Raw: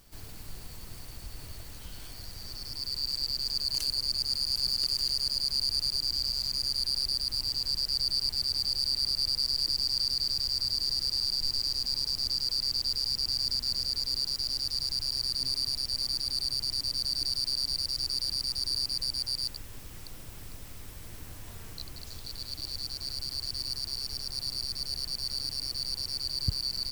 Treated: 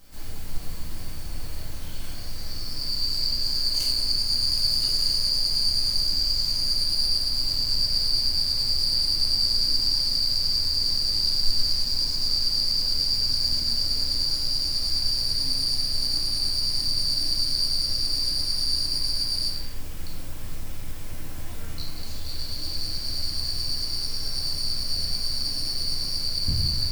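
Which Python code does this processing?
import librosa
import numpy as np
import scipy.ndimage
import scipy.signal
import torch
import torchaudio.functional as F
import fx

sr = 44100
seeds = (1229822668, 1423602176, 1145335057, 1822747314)

y = fx.room_shoebox(x, sr, seeds[0], volume_m3=290.0, walls='mixed', distance_m=2.1)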